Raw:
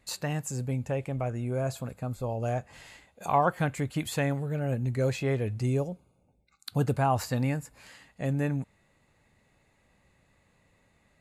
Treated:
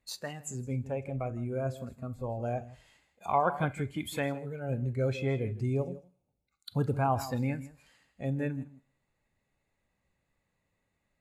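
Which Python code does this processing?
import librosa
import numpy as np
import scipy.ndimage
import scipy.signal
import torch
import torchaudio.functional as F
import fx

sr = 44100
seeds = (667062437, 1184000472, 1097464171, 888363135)

y = x + 10.0 ** (-12.5 / 20.0) * np.pad(x, (int(161 * sr / 1000.0), 0))[:len(x)]
y = fx.rev_schroeder(y, sr, rt60_s=0.59, comb_ms=30, drr_db=15.0)
y = fx.noise_reduce_blind(y, sr, reduce_db=11)
y = F.gain(torch.from_numpy(y), -2.5).numpy()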